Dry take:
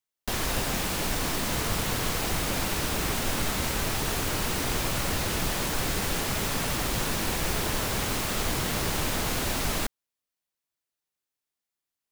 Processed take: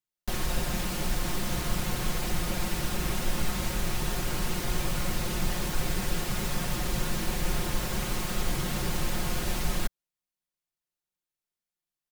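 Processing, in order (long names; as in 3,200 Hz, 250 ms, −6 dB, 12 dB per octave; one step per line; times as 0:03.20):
low-shelf EQ 180 Hz +8.5 dB
comb filter 5.6 ms
level −6.5 dB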